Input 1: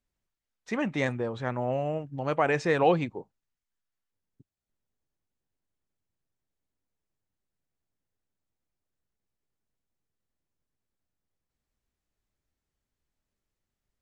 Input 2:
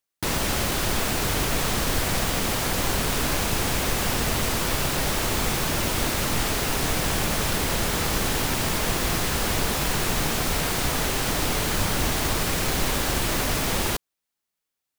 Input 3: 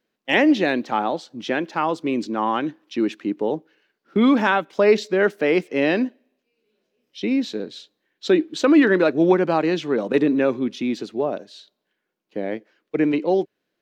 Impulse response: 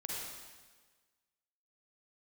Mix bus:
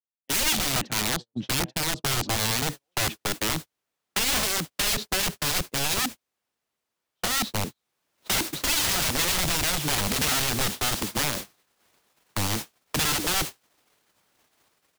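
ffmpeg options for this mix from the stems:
-filter_complex "[0:a]acompressor=threshold=-29dB:ratio=2,aexciter=amount=1.5:drive=6.5:freq=3500,volume=-11dB[link_01];[1:a]highpass=frequency=480:poles=1,adelay=2350,volume=-3.5dB,afade=type=in:start_time=7.75:duration=0.42:silence=0.375837[link_02];[2:a]bass=frequency=250:gain=14,treble=frequency=4000:gain=-6,aeval=exprs='(mod(6.31*val(0)+1,2)-1)/6.31':channel_layout=same,volume=1.5dB[link_03];[link_01][link_02][link_03]amix=inputs=3:normalize=0,agate=range=-45dB:threshold=-25dB:ratio=16:detection=peak,acrossover=split=130|3000[link_04][link_05][link_06];[link_05]acompressor=threshold=-34dB:ratio=2[link_07];[link_04][link_07][link_06]amix=inputs=3:normalize=0,alimiter=limit=-13dB:level=0:latency=1:release=38"

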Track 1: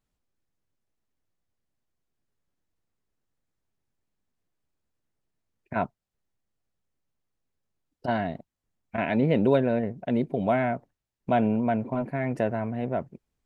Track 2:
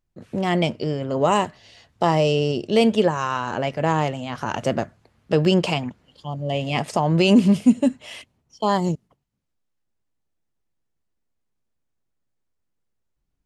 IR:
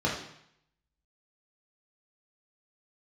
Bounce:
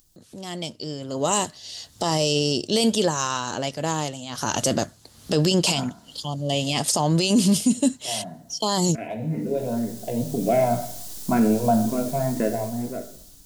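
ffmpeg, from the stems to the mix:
-filter_complex "[0:a]asplit=2[link_01][link_02];[link_02]afreqshift=2[link_03];[link_01][link_03]amix=inputs=2:normalize=1,volume=-11.5dB,asplit=2[link_04][link_05];[link_05]volume=-13dB[link_06];[1:a]equalizer=frequency=290:width=5.6:gain=4.5,aexciter=amount=5.7:drive=6.6:freq=3400,acompressor=mode=upward:threshold=-27dB:ratio=2.5,volume=-3dB,afade=type=in:start_time=4.28:duration=0.31:silence=0.251189,asplit=2[link_07][link_08];[link_08]apad=whole_len=593561[link_09];[link_04][link_09]sidechaingate=range=-33dB:threshold=-52dB:ratio=16:detection=peak[link_10];[2:a]atrim=start_sample=2205[link_11];[link_06][link_11]afir=irnorm=-1:irlink=0[link_12];[link_10][link_07][link_12]amix=inputs=3:normalize=0,dynaudnorm=framelen=340:gausssize=7:maxgain=15dB,alimiter=limit=-10.5dB:level=0:latency=1:release=11"

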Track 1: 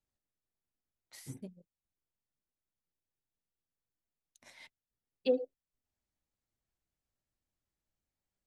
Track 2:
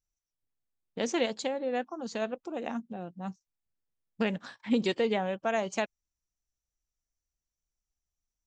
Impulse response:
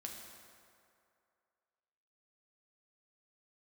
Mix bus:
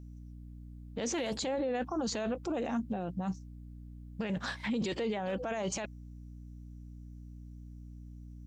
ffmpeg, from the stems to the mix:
-filter_complex "[0:a]aeval=exprs='0.0501*(abs(mod(val(0)/0.0501+3,4)-2)-1)':channel_layout=same,volume=-0.5dB[link_01];[1:a]acontrast=86,alimiter=limit=-19.5dB:level=0:latency=1:release=45,volume=3dB,asplit=2[link_02][link_03];[link_03]apad=whole_len=373503[link_04];[link_01][link_04]sidechaincompress=threshold=-30dB:ratio=8:attack=41:release=151[link_05];[link_05][link_02]amix=inputs=2:normalize=0,aeval=exprs='val(0)+0.00501*(sin(2*PI*60*n/s)+sin(2*PI*2*60*n/s)/2+sin(2*PI*3*60*n/s)/3+sin(2*PI*4*60*n/s)/4+sin(2*PI*5*60*n/s)/5)':channel_layout=same,alimiter=level_in=2.5dB:limit=-24dB:level=0:latency=1:release=12,volume=-2.5dB"

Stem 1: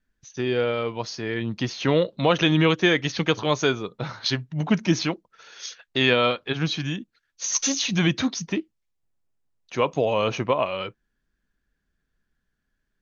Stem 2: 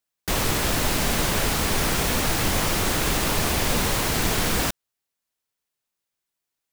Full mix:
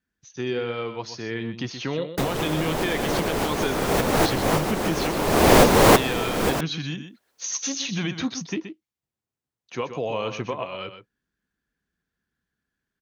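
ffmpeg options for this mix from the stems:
ffmpeg -i stem1.wav -i stem2.wav -filter_complex "[0:a]highpass=77,bandreject=frequency=600:width=12,alimiter=limit=-14.5dB:level=0:latency=1:release=204,volume=-2.5dB,asplit=3[link_01][link_02][link_03];[link_02]volume=-10dB[link_04];[1:a]equalizer=frequency=470:width=0.38:gain=13.5,dynaudnorm=framelen=120:gausssize=3:maxgain=7.5dB,adelay=1900,volume=2dB[link_05];[link_03]apad=whole_len=380279[link_06];[link_05][link_06]sidechaincompress=threshold=-39dB:ratio=10:attack=7.4:release=390[link_07];[link_04]aecho=0:1:125:1[link_08];[link_01][link_07][link_08]amix=inputs=3:normalize=0" out.wav

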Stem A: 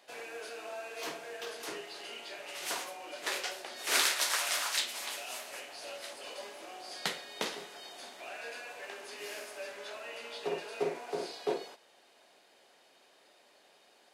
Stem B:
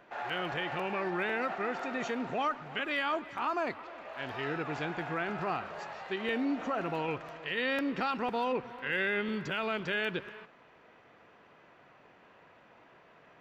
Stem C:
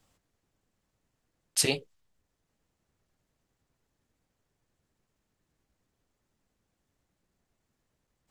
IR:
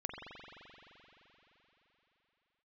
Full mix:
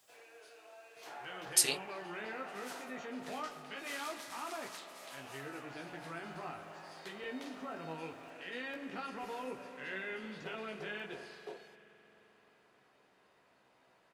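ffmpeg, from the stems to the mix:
-filter_complex "[0:a]equalizer=frequency=210:width_type=o:width=0.39:gain=-12.5,alimiter=limit=-22dB:level=0:latency=1:release=293,volume=-13.5dB[link_01];[1:a]bandreject=frequency=60:width_type=h:width=6,bandreject=frequency=120:width_type=h:width=6,bandreject=frequency=180:width_type=h:width=6,flanger=delay=15:depth=4.9:speed=0.24,adelay=950,volume=-11dB,asplit=2[link_02][link_03];[link_03]volume=-5dB[link_04];[2:a]highpass=frequency=590:poles=1,acompressor=threshold=-29dB:ratio=4,highshelf=frequency=6000:gain=10,volume=-1dB[link_05];[3:a]atrim=start_sample=2205[link_06];[link_04][link_06]afir=irnorm=-1:irlink=0[link_07];[link_01][link_02][link_05][link_07]amix=inputs=4:normalize=0"

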